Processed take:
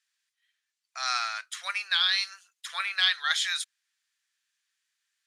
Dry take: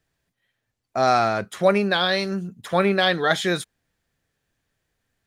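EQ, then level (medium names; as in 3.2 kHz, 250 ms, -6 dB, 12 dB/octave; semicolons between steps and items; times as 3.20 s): high-pass 1.1 kHz 24 dB/octave; distance through air 79 m; differentiator; +9.0 dB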